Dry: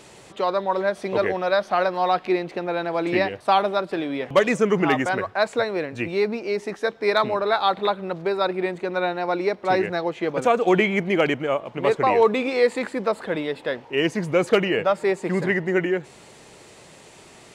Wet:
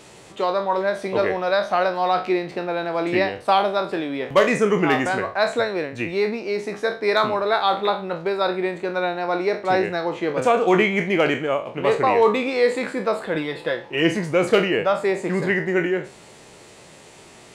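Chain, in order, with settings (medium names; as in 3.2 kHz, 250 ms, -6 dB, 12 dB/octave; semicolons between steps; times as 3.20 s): spectral sustain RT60 0.34 s; 13.35–14.17 s: comb 5.9 ms, depth 56%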